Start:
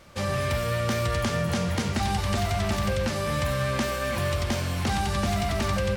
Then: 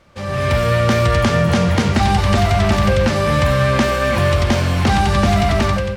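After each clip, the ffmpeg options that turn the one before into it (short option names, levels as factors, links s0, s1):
-af "lowpass=f=3700:p=1,dynaudnorm=f=110:g=7:m=3.98"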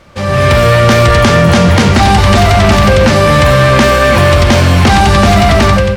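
-af "apsyclip=3.98,volume=0.841"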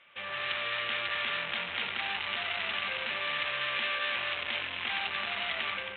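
-af "aresample=8000,asoftclip=type=tanh:threshold=0.224,aresample=44100,bandpass=f=2700:t=q:w=1.9:csg=0,volume=0.447"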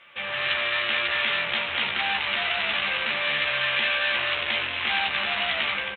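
-filter_complex "[0:a]asplit=2[s0][s1];[s1]adelay=14,volume=0.596[s2];[s0][s2]amix=inputs=2:normalize=0,volume=2.11"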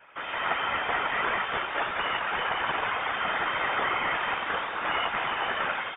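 -af "lowpass=f=3100:t=q:w=0.5098,lowpass=f=3100:t=q:w=0.6013,lowpass=f=3100:t=q:w=0.9,lowpass=f=3100:t=q:w=2.563,afreqshift=-3700,highshelf=f=2200:g=-8.5,afftfilt=real='hypot(re,im)*cos(2*PI*random(0))':imag='hypot(re,im)*sin(2*PI*random(1))':win_size=512:overlap=0.75,volume=2.11"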